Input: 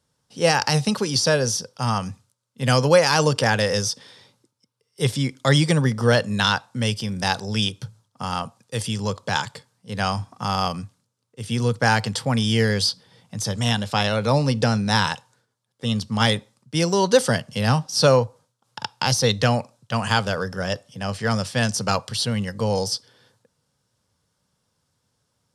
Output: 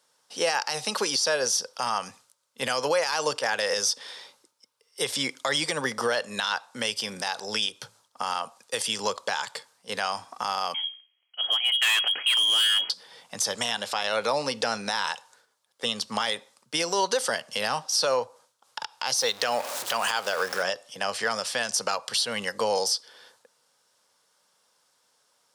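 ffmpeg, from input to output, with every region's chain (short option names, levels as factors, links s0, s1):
-filter_complex "[0:a]asettb=1/sr,asplit=3[s0][s1][s2];[s0]atrim=end=10.744[s3];[s1]atrim=start=10.74:end=12.9,asetpts=PTS-STARTPTS,afade=t=in:d=0.004:c=qsin,afade=t=out:st=2.156:d=0.004:c=qsin,bandreject=f=60:t=h:w=6,bandreject=f=120:t=h:w=6,bandreject=f=180:t=h:w=6,bandreject=f=240:t=h:w=6,bandreject=f=300:t=h:w=6,bandreject=f=360:t=h:w=6,bandreject=f=420:t=h:w=6,bandreject=f=480:t=h:w=6,bandreject=f=540:t=h:w=6,lowpass=f=2900:t=q:w=0.5098,lowpass=f=2900:t=q:w=0.6013,lowpass=f=2900:t=q:w=0.9,lowpass=f=2900:t=q:w=2.563,afreqshift=-3400,asoftclip=type=hard:threshold=0.0944[s4];[s2]atrim=start=12.896[s5];[s3][s4]acrossfade=d=0.004:c1=hsin:c2=qsin[s6];[s6][s5]acrossfade=d=0.004:c1=qsin:c2=hsin,asettb=1/sr,asplit=3[s7][s8][s9];[s7]atrim=end=19.204[s10];[s8]atrim=start=19.2:end=20.63,asetpts=PTS-STARTPTS,afade=t=in:d=0.004:c=qsin,afade=t=out:st=1.426:d=0.004:c=qsin,aeval=exprs='val(0)+0.5*0.0282*sgn(val(0))':c=same,bass=f=250:g=-5,treble=f=4000:g=1[s11];[s9]atrim=start=20.626[s12];[s10][s11]acrossfade=d=0.004:c1=hsin:c2=qsin[s13];[s13][s12]acrossfade=d=0.004:c1=qsin:c2=hsin,highpass=560,acompressor=threshold=0.0251:ratio=2,alimiter=limit=0.0891:level=0:latency=1:release=93,volume=2.24"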